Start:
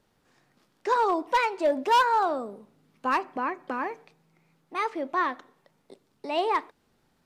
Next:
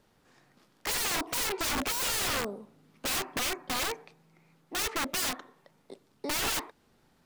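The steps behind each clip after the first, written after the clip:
wrap-around overflow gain 28 dB
level +2.5 dB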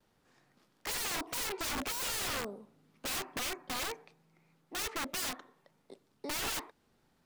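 noise gate with hold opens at −58 dBFS
level −5.5 dB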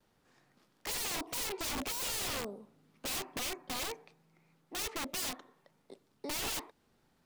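dynamic equaliser 1,500 Hz, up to −5 dB, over −53 dBFS, Q 1.5

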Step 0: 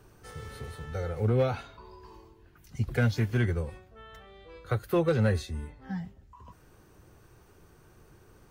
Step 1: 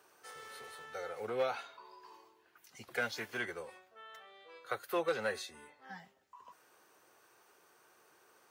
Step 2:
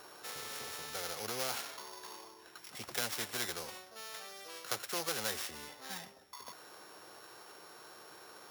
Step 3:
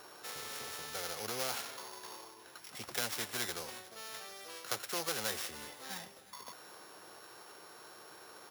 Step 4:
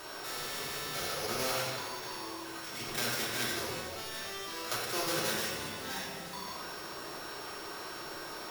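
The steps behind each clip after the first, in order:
high-pass filter 620 Hz 12 dB per octave; level −1.5 dB
samples sorted by size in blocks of 8 samples; every bin compressed towards the loudest bin 2 to 1; level +4 dB
repeating echo 362 ms, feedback 57%, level −19 dB
converter with a step at zero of −43.5 dBFS; rectangular room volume 1,000 cubic metres, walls mixed, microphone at 2.8 metres; level −2.5 dB

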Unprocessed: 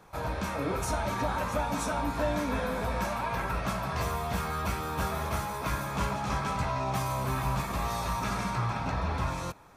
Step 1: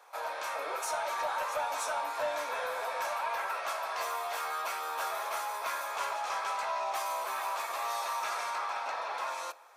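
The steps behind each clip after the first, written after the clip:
inverse Chebyshev high-pass filter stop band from 160 Hz, stop band 60 dB
convolution reverb RT60 0.45 s, pre-delay 6 ms, DRR 17.5 dB
soft clipping −23 dBFS, distortion −25 dB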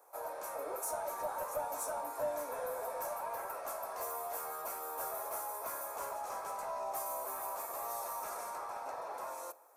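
drawn EQ curve 190 Hz 0 dB, 580 Hz −6 dB, 3,300 Hz −25 dB, 12,000 Hz +2 dB
level +4.5 dB

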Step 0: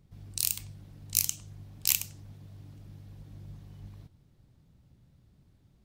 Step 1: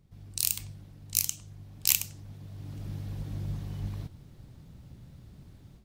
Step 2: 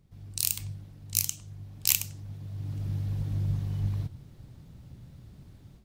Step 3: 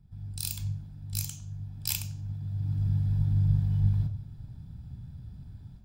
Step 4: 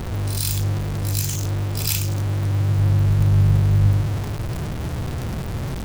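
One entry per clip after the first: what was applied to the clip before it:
automatic gain control gain up to 12.5 dB; level −1 dB
dynamic equaliser 110 Hz, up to +8 dB, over −51 dBFS, Q 1.6
convolution reverb RT60 0.40 s, pre-delay 3 ms, DRR 8 dB; level −6.5 dB
converter with a step at zero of −26.5 dBFS; backwards echo 101 ms −8 dB; level +4 dB

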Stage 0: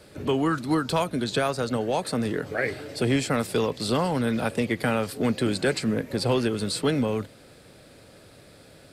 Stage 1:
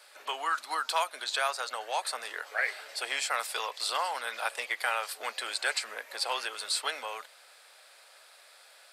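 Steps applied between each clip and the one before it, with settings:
high-pass filter 780 Hz 24 dB per octave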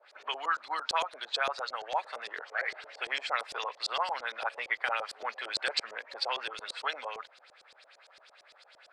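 auto-filter low-pass saw up 8.8 Hz 460–6,700 Hz
level −3.5 dB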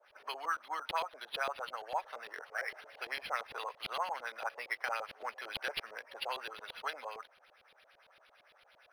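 linearly interpolated sample-rate reduction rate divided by 6×
level −4 dB

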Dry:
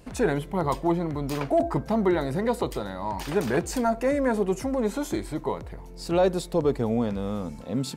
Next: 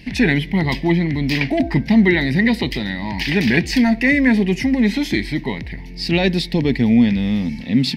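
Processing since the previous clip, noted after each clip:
drawn EQ curve 110 Hz 0 dB, 240 Hz +6 dB, 510 Hz −12 dB, 870 Hz −7 dB, 1,300 Hz −19 dB, 1,900 Hz +14 dB, 3,500 Hz +7 dB, 5,100 Hz +7 dB, 7,200 Hz −12 dB, 12,000 Hz −7 dB
level +8.5 dB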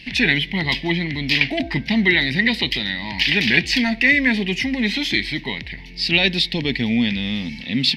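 parametric band 3,200 Hz +15 dB 1.7 octaves
level −6.5 dB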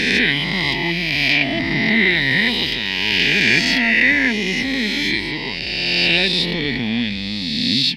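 peak hold with a rise ahead of every peak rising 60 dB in 2.39 s
level −3.5 dB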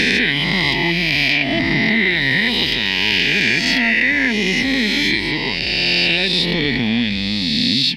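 downward compressor, threshold −17 dBFS, peak gain reduction 7 dB
level +4.5 dB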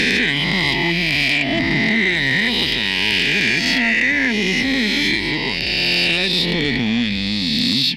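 soft clipping −7 dBFS, distortion −22 dB

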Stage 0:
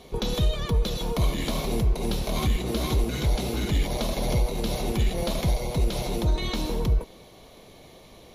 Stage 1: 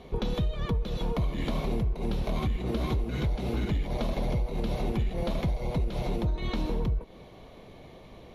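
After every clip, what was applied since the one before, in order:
bass and treble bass +3 dB, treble −14 dB
downward compressor, threshold −25 dBFS, peak gain reduction 10 dB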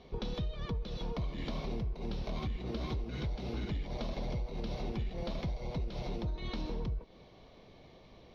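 high shelf with overshoot 6,800 Hz −9.5 dB, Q 3
level −8 dB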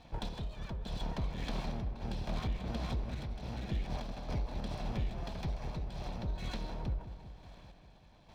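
lower of the sound and its delayed copy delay 1.2 ms
sample-and-hold tremolo
on a send: feedback echo with a low-pass in the loop 191 ms, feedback 66%, low-pass 1,900 Hz, level −11.5 dB
on the sum: level +2 dB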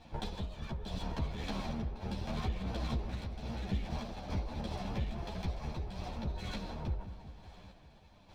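string-ensemble chorus
level +4 dB

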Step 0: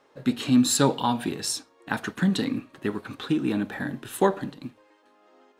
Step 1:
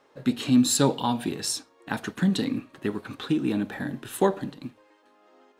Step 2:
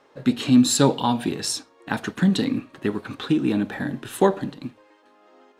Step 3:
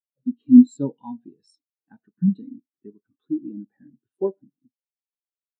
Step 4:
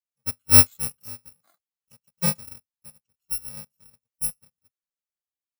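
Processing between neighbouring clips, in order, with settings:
dynamic equaliser 1,400 Hz, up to −4 dB, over −38 dBFS, Q 1
high-shelf EQ 11,000 Hz −8 dB; level +4 dB
every bin expanded away from the loudest bin 2.5 to 1; level +2 dB
samples in bit-reversed order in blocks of 128 samples; level −4 dB

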